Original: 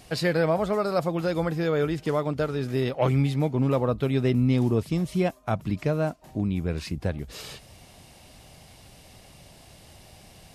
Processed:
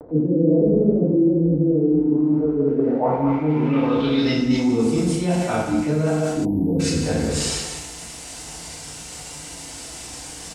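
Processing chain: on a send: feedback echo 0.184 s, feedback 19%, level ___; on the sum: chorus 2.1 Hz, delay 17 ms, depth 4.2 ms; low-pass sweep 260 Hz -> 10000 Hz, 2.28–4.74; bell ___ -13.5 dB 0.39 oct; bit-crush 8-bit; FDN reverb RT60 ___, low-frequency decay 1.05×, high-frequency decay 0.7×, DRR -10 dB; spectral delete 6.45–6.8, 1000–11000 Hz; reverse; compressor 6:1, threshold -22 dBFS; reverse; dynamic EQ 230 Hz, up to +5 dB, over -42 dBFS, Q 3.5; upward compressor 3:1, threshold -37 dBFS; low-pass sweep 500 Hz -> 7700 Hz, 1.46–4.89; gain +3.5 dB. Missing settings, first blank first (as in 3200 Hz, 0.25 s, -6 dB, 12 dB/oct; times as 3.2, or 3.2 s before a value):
-8.5 dB, 110 Hz, 1 s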